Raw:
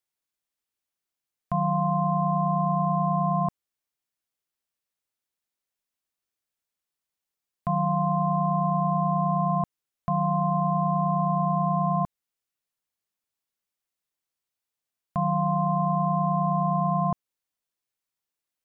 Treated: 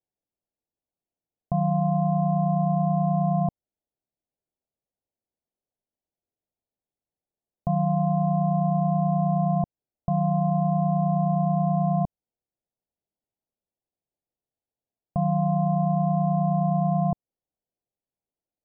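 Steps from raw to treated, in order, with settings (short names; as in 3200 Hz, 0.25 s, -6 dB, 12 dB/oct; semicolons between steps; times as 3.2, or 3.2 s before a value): steep low-pass 790 Hz 36 dB/oct; dynamic EQ 360 Hz, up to -4 dB, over -40 dBFS, Q 0.75; gain +4.5 dB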